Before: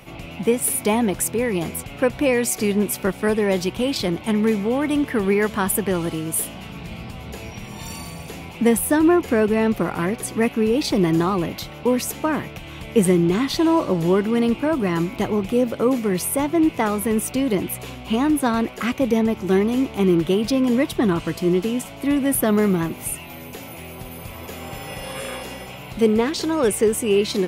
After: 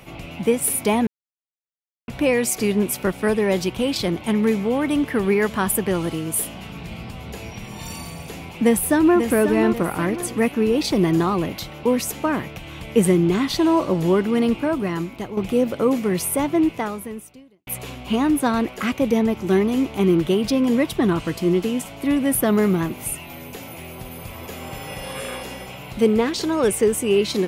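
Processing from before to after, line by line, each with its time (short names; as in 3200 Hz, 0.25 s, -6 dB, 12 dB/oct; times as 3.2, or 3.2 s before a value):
1.07–2.08 mute
8.19–9.19 echo throw 0.54 s, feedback 40%, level -8 dB
14.55–15.37 fade out, to -10.5 dB
16.57–17.67 fade out quadratic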